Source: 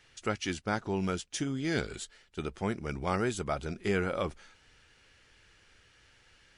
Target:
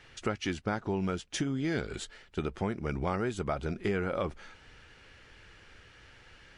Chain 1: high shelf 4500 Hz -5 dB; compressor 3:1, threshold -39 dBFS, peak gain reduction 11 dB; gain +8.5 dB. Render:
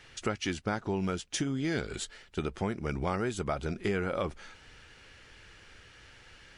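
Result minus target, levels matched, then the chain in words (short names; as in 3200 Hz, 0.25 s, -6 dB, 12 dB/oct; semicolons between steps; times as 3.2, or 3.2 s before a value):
8000 Hz band +4.0 dB
high shelf 4500 Hz -12 dB; compressor 3:1, threshold -39 dBFS, peak gain reduction 10.5 dB; gain +8.5 dB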